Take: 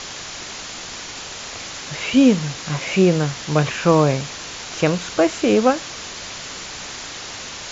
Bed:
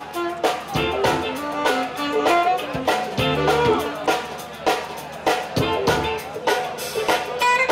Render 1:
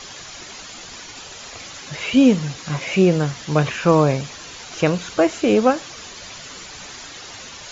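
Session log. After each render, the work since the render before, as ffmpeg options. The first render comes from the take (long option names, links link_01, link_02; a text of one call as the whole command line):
ffmpeg -i in.wav -af "afftdn=noise_reduction=8:noise_floor=-33" out.wav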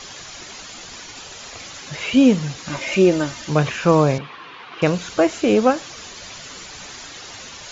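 ffmpeg -i in.wav -filter_complex "[0:a]asettb=1/sr,asplit=3[link_01][link_02][link_03];[link_01]atrim=end=2.684[link_04];[link_02]atrim=start=2.68:end=3.5,asetpts=PTS-STARTPTS,afade=type=in:duration=0.004:curve=qsin,afade=type=out:start_time=0.816:duration=0.004:curve=qsin,aecho=1:1:3.3:0.65,atrim=end_sample=36162[link_05];[link_03]atrim=start=3.496[link_06];[link_04][link_05]acrossfade=duration=0.004:curve1=hsin:curve2=qsin[link_07];[link_07][link_06]acrossfade=duration=0.004:curve1=qsin:curve2=hsin,asettb=1/sr,asplit=3[link_08][link_09][link_10];[link_08]atrim=end=4.184[link_11];[link_09]atrim=start=4.18:end=4.82,asetpts=PTS-STARTPTS,afade=type=in:duration=0.004:curve=qsin,afade=type=out:start_time=0.636:duration=0.004:curve=qsin,highpass=190,equalizer=frequency=230:width_type=q:width=4:gain=-4,equalizer=frequency=610:width_type=q:width=4:gain=-7,equalizer=frequency=1100:width_type=q:width=4:gain=9,lowpass=frequency=3200:width=0.5412,lowpass=frequency=3200:width=1.3066[link_12];[link_10]atrim=start=4.816[link_13];[link_11][link_12]acrossfade=duration=0.004:curve1=hsin:curve2=qsin[link_14];[link_14][link_13]acrossfade=duration=0.004:curve1=qsin:curve2=hsin" out.wav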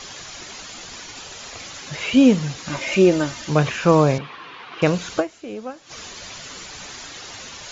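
ffmpeg -i in.wav -filter_complex "[0:a]asplit=3[link_01][link_02][link_03];[link_01]atrim=end=5.46,asetpts=PTS-STARTPTS,afade=type=out:start_time=5.19:duration=0.27:curve=exp:silence=0.149624[link_04];[link_02]atrim=start=5.46:end=5.65,asetpts=PTS-STARTPTS,volume=-16.5dB[link_05];[link_03]atrim=start=5.65,asetpts=PTS-STARTPTS,afade=type=in:duration=0.27:curve=exp:silence=0.149624[link_06];[link_04][link_05][link_06]concat=n=3:v=0:a=1" out.wav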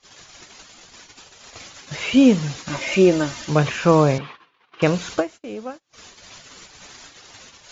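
ffmpeg -i in.wav -af "agate=range=-27dB:threshold=-35dB:ratio=16:detection=peak" out.wav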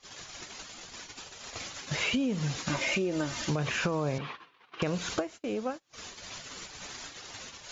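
ffmpeg -i in.wav -af "alimiter=limit=-12.5dB:level=0:latency=1:release=134,acompressor=threshold=-27dB:ratio=6" out.wav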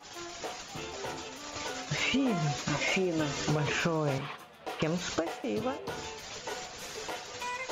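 ffmpeg -i in.wav -i bed.wav -filter_complex "[1:a]volume=-19.5dB[link_01];[0:a][link_01]amix=inputs=2:normalize=0" out.wav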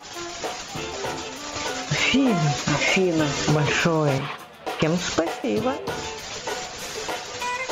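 ffmpeg -i in.wav -af "volume=9dB" out.wav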